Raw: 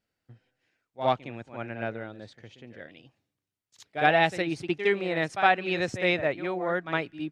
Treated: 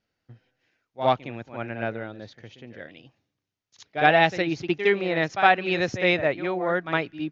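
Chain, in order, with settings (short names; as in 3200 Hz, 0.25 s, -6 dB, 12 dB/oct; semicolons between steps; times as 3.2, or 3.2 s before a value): steep low-pass 6800 Hz 96 dB/oct; gain +3.5 dB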